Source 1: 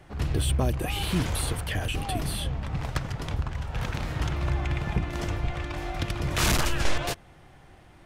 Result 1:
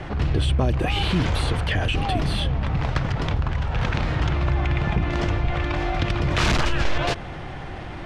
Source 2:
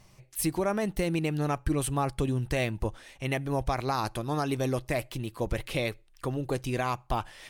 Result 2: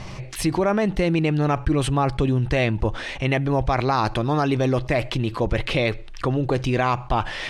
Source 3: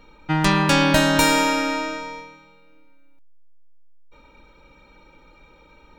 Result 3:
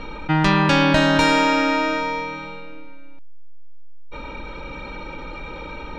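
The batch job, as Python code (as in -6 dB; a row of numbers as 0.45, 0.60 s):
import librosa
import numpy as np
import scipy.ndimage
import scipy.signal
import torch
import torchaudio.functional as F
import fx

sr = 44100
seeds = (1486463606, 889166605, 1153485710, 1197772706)

y = scipy.signal.sosfilt(scipy.signal.butter(2, 4300.0, 'lowpass', fs=sr, output='sos'), x)
y = fx.env_flatten(y, sr, amount_pct=50)
y = y * 10.0 ** (-22 / 20.0) / np.sqrt(np.mean(np.square(y)))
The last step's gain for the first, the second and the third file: +1.0, +6.0, -0.5 dB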